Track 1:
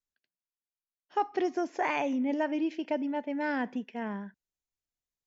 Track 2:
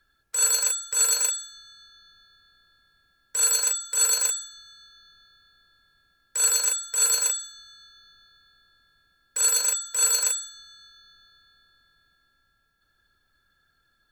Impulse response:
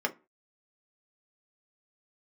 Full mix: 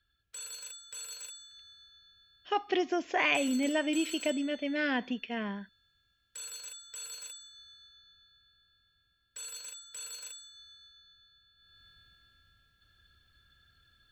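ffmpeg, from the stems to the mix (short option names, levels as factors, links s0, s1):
-filter_complex "[0:a]adelay=1350,volume=0.944[s0];[1:a]equalizer=f=76:w=0.55:g=14,alimiter=limit=0.0794:level=0:latency=1:release=366,volume=0.708,afade=t=in:st=11.56:d=0.31:silence=0.251189[s1];[s0][s1]amix=inputs=2:normalize=0,asuperstop=centerf=880:order=4:qfactor=7.6,equalizer=f=3100:w=1.4:g=13"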